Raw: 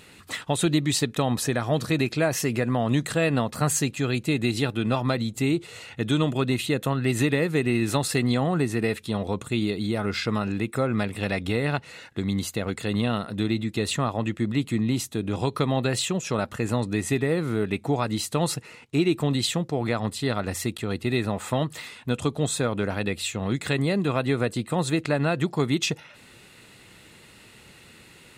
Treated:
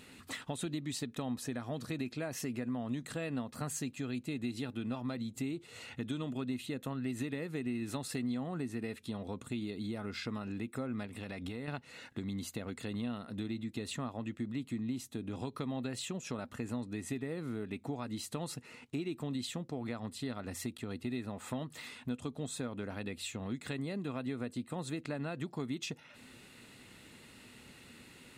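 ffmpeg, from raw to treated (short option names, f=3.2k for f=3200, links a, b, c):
-filter_complex "[0:a]asettb=1/sr,asplit=3[a][b][c];[a]atrim=end=11.064[d];[b]atrim=start=11.06:end=11.68,asetpts=PTS-STARTPTS,afade=t=in:d=0.004:c=qsin,afade=t=out:st=0.616:d=0.004:c=qsin,acompressor=threshold=-29dB:ratio=3:attack=3.2:release=140:knee=1:detection=peak[e];[c]atrim=start=11.676[f];[d][e]acrossfade=d=0.004:c1=hsin:c2=qsin[g];[g][f]acrossfade=d=0.004:c1=qsin:c2=hsin,equalizer=f=250:w=5.2:g=10,acompressor=threshold=-34dB:ratio=2.5,volume=-6dB"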